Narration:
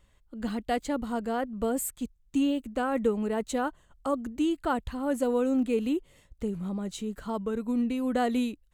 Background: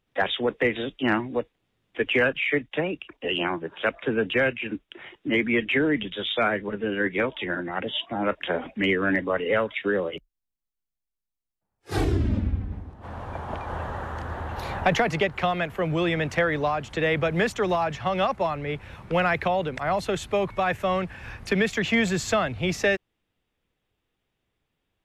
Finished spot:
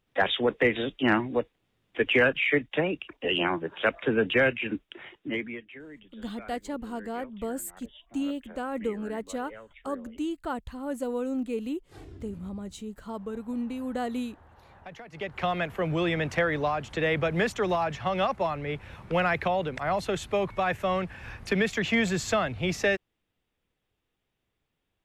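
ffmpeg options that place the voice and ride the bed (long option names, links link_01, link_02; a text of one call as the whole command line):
ffmpeg -i stem1.wav -i stem2.wav -filter_complex "[0:a]adelay=5800,volume=-4.5dB[link_01];[1:a]volume=20.5dB,afade=type=out:start_time=4.85:duration=0.78:silence=0.0707946,afade=type=in:start_time=15.11:duration=0.41:silence=0.0944061[link_02];[link_01][link_02]amix=inputs=2:normalize=0" out.wav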